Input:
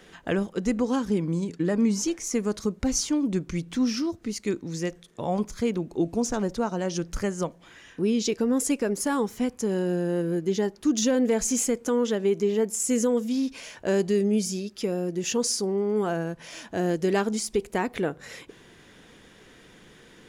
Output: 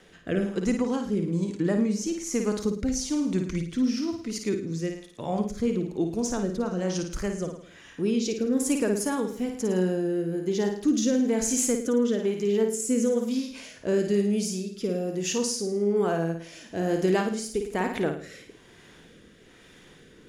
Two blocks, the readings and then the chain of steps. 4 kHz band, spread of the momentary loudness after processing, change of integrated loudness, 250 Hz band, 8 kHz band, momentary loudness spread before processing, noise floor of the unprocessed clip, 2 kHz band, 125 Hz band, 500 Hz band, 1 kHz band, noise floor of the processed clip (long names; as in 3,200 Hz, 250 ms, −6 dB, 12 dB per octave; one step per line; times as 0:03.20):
−2.0 dB, 7 LU, −0.5 dB, 0.0 dB, −1.5 dB, 7 LU, −53 dBFS, −1.5 dB, 0.0 dB, −0.5 dB, −2.0 dB, −53 dBFS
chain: flutter between parallel walls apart 9.3 metres, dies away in 0.55 s
rotating-speaker cabinet horn 1.1 Hz